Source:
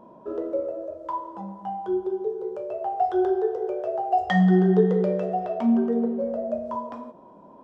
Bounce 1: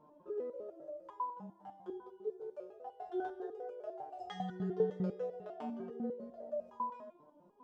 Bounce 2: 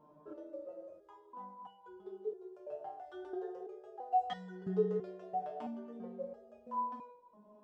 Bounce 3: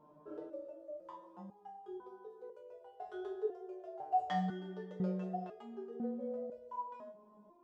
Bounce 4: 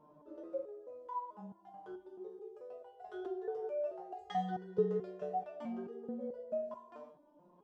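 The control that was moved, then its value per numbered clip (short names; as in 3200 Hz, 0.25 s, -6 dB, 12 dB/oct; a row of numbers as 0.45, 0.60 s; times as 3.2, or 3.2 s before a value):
stepped resonator, rate: 10, 3, 2, 4.6 Hz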